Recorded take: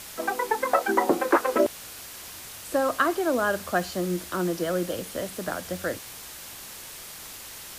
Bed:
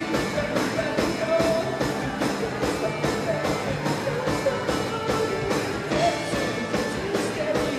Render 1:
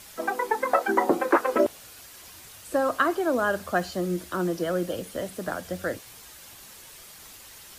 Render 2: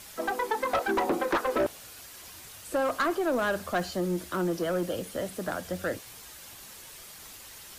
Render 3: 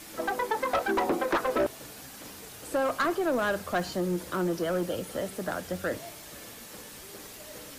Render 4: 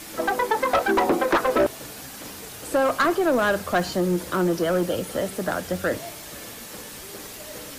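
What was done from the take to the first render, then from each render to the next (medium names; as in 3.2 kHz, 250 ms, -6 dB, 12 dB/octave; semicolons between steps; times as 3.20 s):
noise reduction 7 dB, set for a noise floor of -42 dBFS
saturation -21 dBFS, distortion -10 dB
add bed -23.5 dB
trim +6.5 dB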